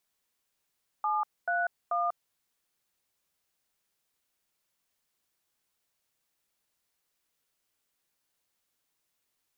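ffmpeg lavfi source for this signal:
-f lavfi -i "aevalsrc='0.0376*clip(min(mod(t,0.436),0.193-mod(t,0.436))/0.002,0,1)*(eq(floor(t/0.436),0)*(sin(2*PI*852*mod(t,0.436))+sin(2*PI*1209*mod(t,0.436)))+eq(floor(t/0.436),1)*(sin(2*PI*697*mod(t,0.436))+sin(2*PI*1477*mod(t,0.436)))+eq(floor(t/0.436),2)*(sin(2*PI*697*mod(t,0.436))+sin(2*PI*1209*mod(t,0.436))))':d=1.308:s=44100"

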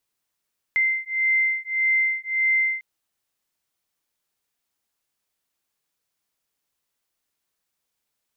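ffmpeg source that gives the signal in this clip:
-f lavfi -i "aevalsrc='0.075*(sin(2*PI*2080*t)+sin(2*PI*2081.7*t))':d=2.05:s=44100"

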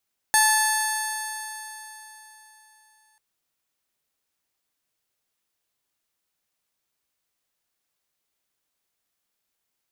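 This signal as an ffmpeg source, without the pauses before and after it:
-f lavfi -i "aevalsrc='0.1*pow(10,-3*t/3.66)*sin(2*PI*868.08*t)+0.106*pow(10,-3*t/3.66)*sin(2*PI*1742.65*t)+0.0158*pow(10,-3*t/3.66)*sin(2*PI*2630.1*t)+0.0224*pow(10,-3*t/3.66)*sin(2*PI*3536.68*t)+0.0447*pow(10,-3*t/3.66)*sin(2*PI*4468.42*t)+0.0168*pow(10,-3*t/3.66)*sin(2*PI*5431.05*t)+0.0562*pow(10,-3*t/3.66)*sin(2*PI*6429.99*t)+0.0106*pow(10,-3*t/3.66)*sin(2*PI*7470.3*t)+0.0708*pow(10,-3*t/3.66)*sin(2*PI*8556.66*t)+0.0708*pow(10,-3*t/3.66)*sin(2*PI*9693.35*t)+0.0106*pow(10,-3*t/3.66)*sin(2*PI*10884.3*t)+0.0282*pow(10,-3*t/3.66)*sin(2*PI*12133.04*t)+0.0178*pow(10,-3*t/3.66)*sin(2*PI*13442.76*t)':d=2.84:s=44100"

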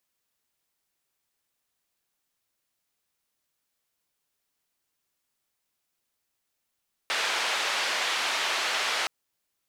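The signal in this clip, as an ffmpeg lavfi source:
-f lavfi -i "anoisesrc=c=white:d=1.97:r=44100:seed=1,highpass=f=640,lowpass=f=3500,volume=-14.7dB"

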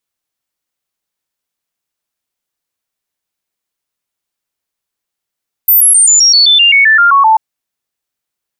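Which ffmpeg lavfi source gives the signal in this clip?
-f lavfi -i "aevalsrc='0.668*clip(min(mod(t,0.13),0.13-mod(t,0.13))/0.005,0,1)*sin(2*PI*14100*pow(2,-floor(t/0.13)/3)*mod(t,0.13))':d=1.69:s=44100"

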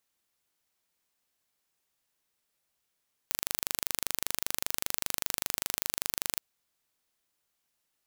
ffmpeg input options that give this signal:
-f lavfi -i "aevalsrc='0.794*eq(mod(n,1757),0)':d=3.08:s=44100"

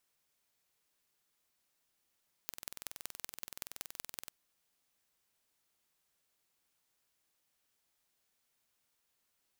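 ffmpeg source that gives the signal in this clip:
-f lavfi -i "aevalsrc='0.266*eq(mod(n,2080),0)*(0.5+0.5*eq(mod(n,8320),0))':d=1.81:s=44100"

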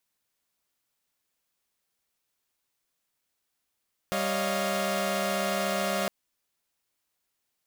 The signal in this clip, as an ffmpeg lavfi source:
-f lavfi -i "aevalsrc='0.0335*((2*mod(196*t,1)-1)+(2*mod(554.37*t,1)-1)+(2*mod(622.25*t,1)-1)+(2*mod(698.46*t,1)-1))':d=1.96:s=44100"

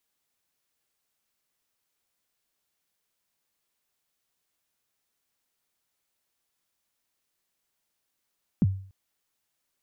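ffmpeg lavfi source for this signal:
-f lavfi -i "aevalsrc='0.178*pow(10,-3*t/0.48)*sin(2*PI*(250*0.034/log(96/250)*(exp(log(96/250)*min(t,0.034)/0.034)-1)+96*max(t-0.034,0)))':d=0.29:s=44100"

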